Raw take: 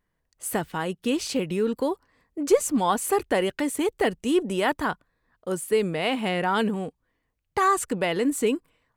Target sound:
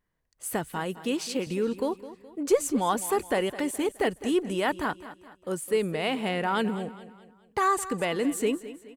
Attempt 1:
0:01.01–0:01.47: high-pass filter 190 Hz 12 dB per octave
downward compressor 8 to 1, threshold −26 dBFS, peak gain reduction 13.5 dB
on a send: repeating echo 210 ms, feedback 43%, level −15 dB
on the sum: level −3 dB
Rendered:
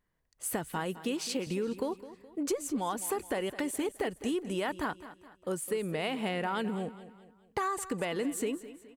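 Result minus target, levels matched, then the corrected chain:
downward compressor: peak gain reduction +13.5 dB
0:01.01–0:01.47: high-pass filter 190 Hz 12 dB per octave
on a send: repeating echo 210 ms, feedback 43%, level −15 dB
on the sum: level −3 dB

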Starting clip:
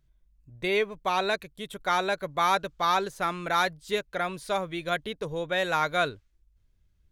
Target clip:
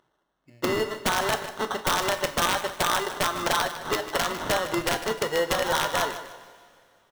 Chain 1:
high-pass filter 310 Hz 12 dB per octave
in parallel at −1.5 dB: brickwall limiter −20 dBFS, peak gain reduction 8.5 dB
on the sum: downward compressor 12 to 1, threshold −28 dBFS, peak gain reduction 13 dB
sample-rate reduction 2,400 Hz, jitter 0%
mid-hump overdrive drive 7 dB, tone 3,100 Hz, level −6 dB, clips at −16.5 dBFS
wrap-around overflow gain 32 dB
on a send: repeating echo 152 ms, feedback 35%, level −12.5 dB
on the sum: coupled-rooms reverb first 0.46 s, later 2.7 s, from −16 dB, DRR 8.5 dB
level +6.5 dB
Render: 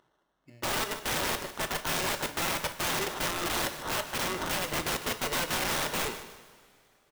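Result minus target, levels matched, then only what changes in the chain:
wrap-around overflow: distortion +22 dB
change: wrap-around overflow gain 22.5 dB

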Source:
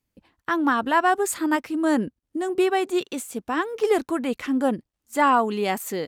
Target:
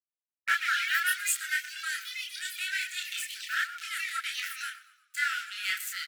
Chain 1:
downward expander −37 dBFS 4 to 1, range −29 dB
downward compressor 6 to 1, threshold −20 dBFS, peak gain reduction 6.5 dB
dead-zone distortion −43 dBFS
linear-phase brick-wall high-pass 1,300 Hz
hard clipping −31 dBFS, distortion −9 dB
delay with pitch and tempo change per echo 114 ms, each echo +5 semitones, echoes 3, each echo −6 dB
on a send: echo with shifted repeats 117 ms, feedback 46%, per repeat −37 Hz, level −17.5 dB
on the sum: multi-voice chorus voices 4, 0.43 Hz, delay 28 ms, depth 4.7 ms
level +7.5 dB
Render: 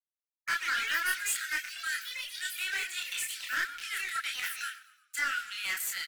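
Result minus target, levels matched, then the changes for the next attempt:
hard clipping: distortion +20 dB; dead-zone distortion: distortion −7 dB
change: dead-zone distortion −35.5 dBFS
change: hard clipping −21 dBFS, distortion −29 dB

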